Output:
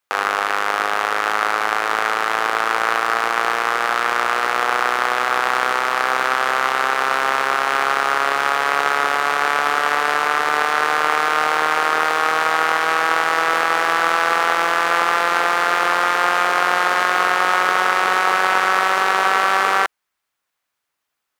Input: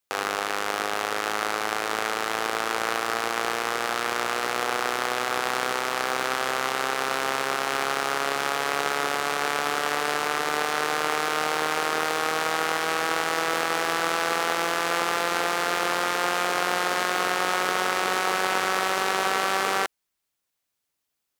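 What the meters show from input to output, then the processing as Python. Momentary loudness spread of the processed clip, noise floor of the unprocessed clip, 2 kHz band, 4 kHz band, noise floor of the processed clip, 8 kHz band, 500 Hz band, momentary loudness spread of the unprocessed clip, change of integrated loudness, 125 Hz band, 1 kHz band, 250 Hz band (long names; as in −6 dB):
3 LU, −81 dBFS, +8.5 dB, +3.5 dB, −79 dBFS, +0.5 dB, +4.0 dB, 3 LU, +7.5 dB, can't be measured, +9.0 dB, +1.5 dB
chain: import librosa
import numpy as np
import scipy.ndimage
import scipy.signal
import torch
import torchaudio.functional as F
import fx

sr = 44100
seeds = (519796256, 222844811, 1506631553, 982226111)

y = fx.peak_eq(x, sr, hz=1300.0, db=11.0, octaves=2.4)
y = y * 10.0 ** (-1.0 / 20.0)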